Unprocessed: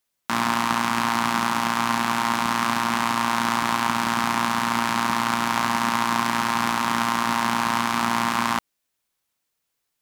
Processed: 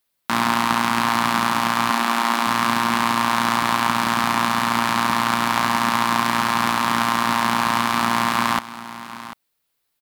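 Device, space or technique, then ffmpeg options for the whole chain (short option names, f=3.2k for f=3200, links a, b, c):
exciter from parts: -filter_complex "[0:a]asplit=2[a][b];[b]highpass=f=3.2k:w=0.5412,highpass=f=3.2k:w=1.3066,asoftclip=type=tanh:threshold=-24.5dB,highpass=f=4.3k:w=0.5412,highpass=f=4.3k:w=1.3066,volume=-7.5dB[c];[a][c]amix=inputs=2:normalize=0,asettb=1/sr,asplit=3[d][e][f];[d]atrim=end=1.904[g];[e]atrim=start=1.9:end=2.47,asetpts=PTS-STARTPTS,afade=t=in:d=0.004:c=qsin,afade=t=out:st=0.566:d=0.004:c=qsin,highpass=f=230:w=0.5412,highpass=f=230:w=1.3066[h];[f]atrim=start=2.466[i];[g][h]acrossfade=d=0.004:c1=hsin:c2=qsin[j];[j][i]acrossfade=d=0.004:c1=qsin:c2=hsin,aecho=1:1:744:0.178,volume=3dB"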